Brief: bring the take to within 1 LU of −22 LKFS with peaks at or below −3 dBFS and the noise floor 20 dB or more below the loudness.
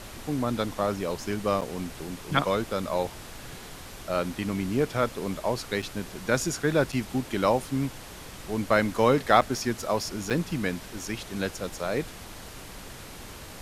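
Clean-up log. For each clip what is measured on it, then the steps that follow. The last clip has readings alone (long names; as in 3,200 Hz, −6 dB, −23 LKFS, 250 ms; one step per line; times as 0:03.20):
number of dropouts 5; longest dropout 6.2 ms; background noise floor −43 dBFS; target noise floor −48 dBFS; integrated loudness −28.0 LKFS; sample peak −5.0 dBFS; target loudness −22.0 LKFS
→ repair the gap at 0:01.61/0:05.82/0:06.92/0:09.41/0:10.30, 6.2 ms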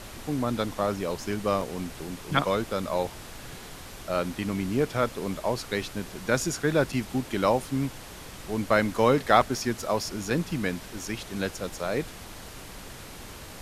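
number of dropouts 0; background noise floor −43 dBFS; target noise floor −48 dBFS
→ noise reduction from a noise print 6 dB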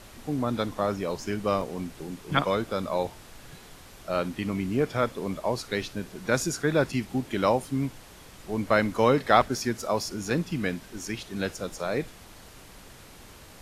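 background noise floor −49 dBFS; integrated loudness −28.0 LKFS; sample peak −5.0 dBFS; target loudness −22.0 LKFS
→ level +6 dB
brickwall limiter −3 dBFS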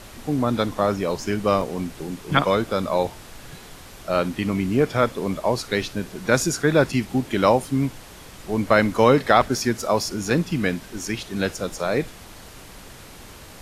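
integrated loudness −22.5 LKFS; sample peak −3.0 dBFS; background noise floor −43 dBFS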